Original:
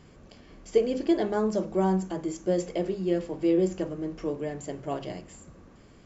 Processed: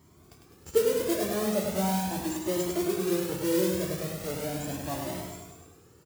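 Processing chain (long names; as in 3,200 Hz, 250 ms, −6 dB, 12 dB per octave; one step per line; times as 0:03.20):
parametric band 3,200 Hz −11 dB 1.4 octaves
in parallel at −7 dB: comparator with hysteresis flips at −39.5 dBFS
on the sum: high-shelf EQ 6,300 Hz +9.5 dB
noise that follows the level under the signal 12 dB
high-pass filter 69 Hz 24 dB per octave
on a send: repeating echo 102 ms, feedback 59%, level −4 dB
on the sum: flanger whose copies keep moving one way rising 0.38 Hz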